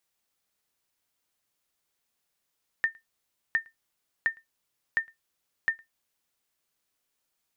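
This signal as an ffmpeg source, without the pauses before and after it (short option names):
-f lavfi -i "aevalsrc='0.158*(sin(2*PI*1810*mod(t,0.71))*exp(-6.91*mod(t,0.71)/0.14)+0.0355*sin(2*PI*1810*max(mod(t,0.71)-0.11,0))*exp(-6.91*max(mod(t,0.71)-0.11,0)/0.14))':d=3.55:s=44100"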